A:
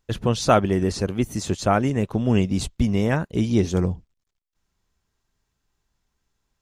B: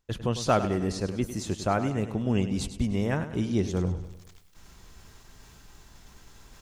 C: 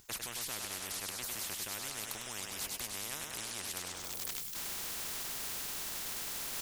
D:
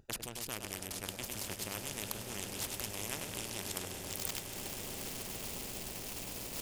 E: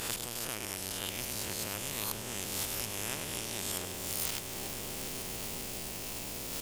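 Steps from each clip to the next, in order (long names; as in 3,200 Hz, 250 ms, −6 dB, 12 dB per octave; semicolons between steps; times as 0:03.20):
reversed playback; upward compression, threshold −20 dBFS; reversed playback; repeating echo 101 ms, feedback 49%, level −11.5 dB; level −6.5 dB
first-order pre-emphasis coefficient 0.8; every bin compressed towards the loudest bin 10 to 1; level −1 dB
adaptive Wiener filter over 41 samples; echo that builds up and dies away 138 ms, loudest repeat 8, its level −14 dB; level +5 dB
peak hold with a rise ahead of every peak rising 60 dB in 1.18 s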